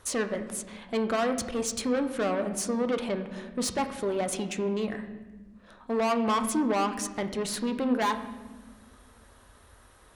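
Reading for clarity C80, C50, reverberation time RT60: 12.5 dB, 10.5 dB, 1.2 s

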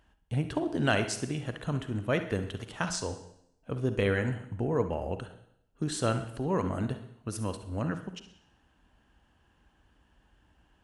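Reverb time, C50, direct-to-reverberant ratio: 0.75 s, 9.0 dB, 8.5 dB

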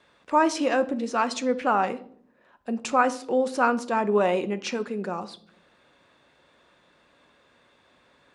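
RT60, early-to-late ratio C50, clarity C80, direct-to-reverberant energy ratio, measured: 0.60 s, 17.0 dB, 21.0 dB, 10.5 dB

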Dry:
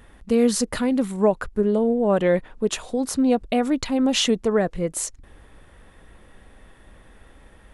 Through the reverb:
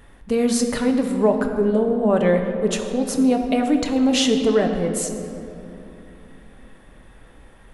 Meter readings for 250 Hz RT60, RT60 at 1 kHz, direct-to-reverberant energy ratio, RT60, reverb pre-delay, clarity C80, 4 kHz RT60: 3.9 s, 2.6 s, 3.5 dB, 2.9 s, 7 ms, 7.0 dB, 1.6 s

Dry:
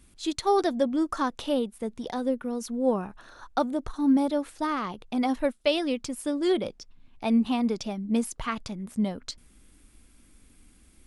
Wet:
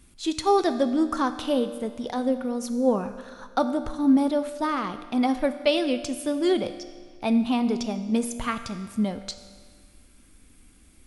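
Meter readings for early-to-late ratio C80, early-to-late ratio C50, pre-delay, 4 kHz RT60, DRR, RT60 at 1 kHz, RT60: 12.0 dB, 11.0 dB, 4 ms, 1.6 s, 9.5 dB, 1.7 s, 1.7 s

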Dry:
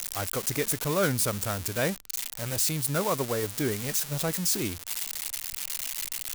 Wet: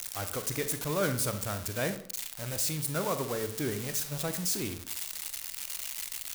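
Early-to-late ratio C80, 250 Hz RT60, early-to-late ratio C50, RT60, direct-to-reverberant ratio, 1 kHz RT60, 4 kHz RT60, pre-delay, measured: 13.5 dB, 0.55 s, 10.5 dB, 0.55 s, 8.5 dB, 0.55 s, 0.35 s, 35 ms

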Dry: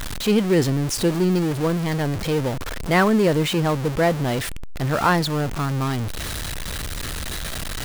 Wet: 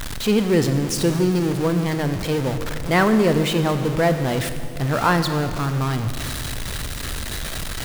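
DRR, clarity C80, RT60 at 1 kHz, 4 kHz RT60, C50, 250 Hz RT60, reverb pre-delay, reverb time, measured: 8.5 dB, 10.5 dB, 2.1 s, 2.0 s, 9.0 dB, 2.8 s, 20 ms, 2.3 s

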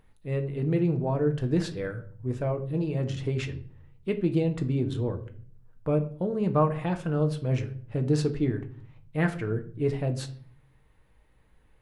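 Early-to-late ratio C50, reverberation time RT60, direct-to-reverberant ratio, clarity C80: 13.5 dB, 0.50 s, 6.0 dB, 18.0 dB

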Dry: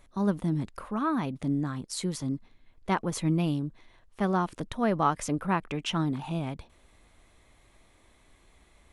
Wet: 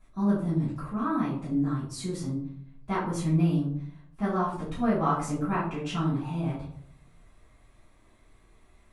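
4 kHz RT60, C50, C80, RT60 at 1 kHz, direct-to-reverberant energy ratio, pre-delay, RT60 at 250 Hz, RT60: 0.30 s, 4.0 dB, 8.0 dB, 0.55 s, -12.5 dB, 4 ms, 0.80 s, 0.60 s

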